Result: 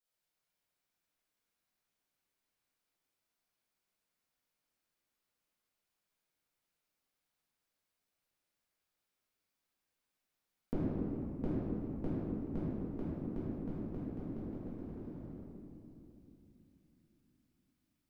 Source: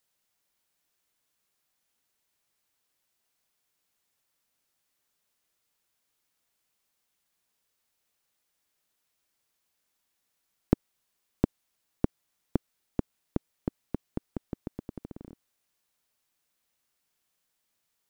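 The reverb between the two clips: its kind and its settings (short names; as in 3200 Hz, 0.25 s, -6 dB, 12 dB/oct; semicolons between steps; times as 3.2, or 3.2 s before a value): shoebox room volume 140 m³, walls hard, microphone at 1.7 m; gain -18 dB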